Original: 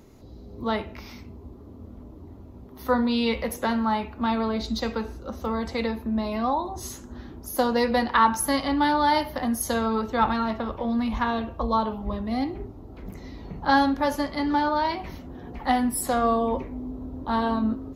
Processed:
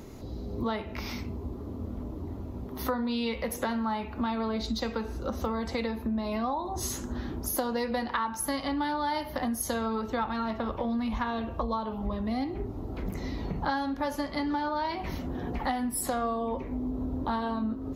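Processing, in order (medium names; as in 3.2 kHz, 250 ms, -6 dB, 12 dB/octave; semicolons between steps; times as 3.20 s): compression 6:1, threshold -35 dBFS, peak gain reduction 19.5 dB; trim +6.5 dB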